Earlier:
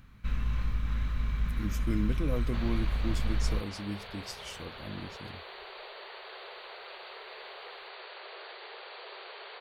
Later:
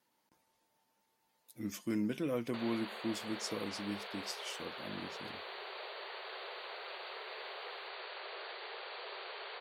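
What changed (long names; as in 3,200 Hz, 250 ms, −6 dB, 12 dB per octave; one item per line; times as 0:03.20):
first sound: muted
master: add high-pass filter 220 Hz 12 dB per octave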